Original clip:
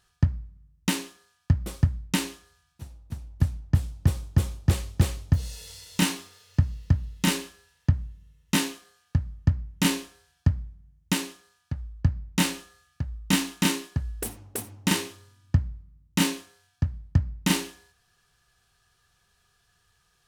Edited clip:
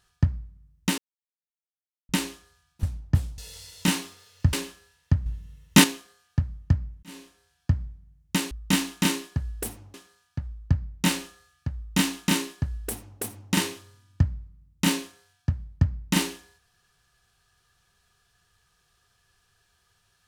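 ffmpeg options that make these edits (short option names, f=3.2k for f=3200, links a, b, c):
-filter_complex "[0:a]asplit=11[a][b][c][d][e][f][g][h][i][j][k];[a]atrim=end=0.98,asetpts=PTS-STARTPTS,afade=t=out:st=0.976:d=0.004:c=hsin[l];[b]atrim=start=0.98:end=2.09,asetpts=PTS-STARTPTS,volume=0[m];[c]atrim=start=2.09:end=2.832,asetpts=PTS-STARTPTS,afade=t=in:d=0.004:c=hsin[n];[d]atrim=start=3.428:end=3.982[o];[e]atrim=start=5.518:end=6.672[p];[f]atrim=start=7.298:end=8.032[q];[g]atrim=start=8.028:end=8.612,asetpts=PTS-STARTPTS,volume=8.5dB[r];[h]atrim=start=8.608:end=9.8,asetpts=PTS-STARTPTS,afade=t=out:st=1.188:d=0.004:c=hsin[s];[i]atrim=start=9.8:end=11.282,asetpts=PTS-STARTPTS,afade=t=in:d=0.78[t];[j]atrim=start=13.108:end=14.542[u];[k]atrim=start=11.278[v];[l][m][n]concat=n=3:v=0:a=1[w];[w][o]acrossfade=d=0.004:c1=hsin:c2=hsin[x];[x][p]acrossfade=d=0.004:c1=hsin:c2=hsin[y];[y][q]acrossfade=d=0.004:c1=hsin:c2=hsin[z];[z][r]acrossfade=d=0.004:c1=hsin:c2=hsin[aa];[s][t]concat=n=2:v=0:a=1[ab];[aa][ab]acrossfade=d=0.004:c1=hsin:c2=hsin[ac];[ac][u]acrossfade=d=0.004:c1=hsin:c2=hsin[ad];[ad][v]acrossfade=d=0.004:c1=hsin:c2=hsin"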